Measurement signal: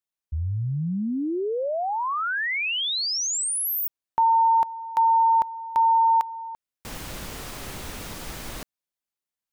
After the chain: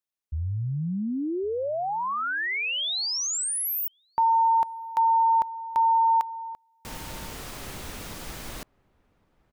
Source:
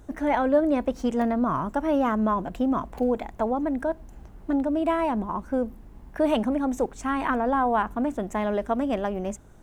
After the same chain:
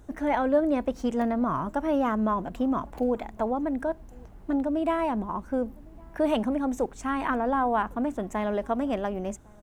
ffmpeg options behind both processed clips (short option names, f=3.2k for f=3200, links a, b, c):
-filter_complex "[0:a]asplit=2[a][b];[b]adelay=1108,volume=-27dB,highshelf=f=4k:g=-24.9[c];[a][c]amix=inputs=2:normalize=0,volume=-2dB"